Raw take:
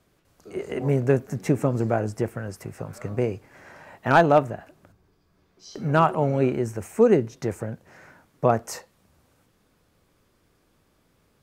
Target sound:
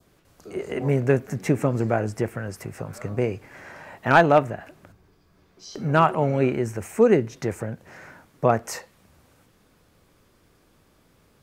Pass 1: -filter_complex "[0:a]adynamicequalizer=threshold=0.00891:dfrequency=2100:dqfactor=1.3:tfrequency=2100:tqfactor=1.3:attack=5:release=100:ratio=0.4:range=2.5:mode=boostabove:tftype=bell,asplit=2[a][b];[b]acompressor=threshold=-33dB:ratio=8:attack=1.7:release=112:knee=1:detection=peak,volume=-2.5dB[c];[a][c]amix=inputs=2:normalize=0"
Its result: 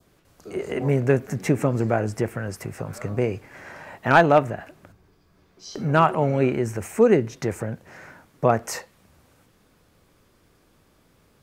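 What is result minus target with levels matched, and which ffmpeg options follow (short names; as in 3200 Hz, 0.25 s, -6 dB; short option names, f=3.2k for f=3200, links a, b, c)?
compressor: peak gain reduction -10 dB
-filter_complex "[0:a]adynamicequalizer=threshold=0.00891:dfrequency=2100:dqfactor=1.3:tfrequency=2100:tqfactor=1.3:attack=5:release=100:ratio=0.4:range=2.5:mode=boostabove:tftype=bell,asplit=2[a][b];[b]acompressor=threshold=-44.5dB:ratio=8:attack=1.7:release=112:knee=1:detection=peak,volume=-2.5dB[c];[a][c]amix=inputs=2:normalize=0"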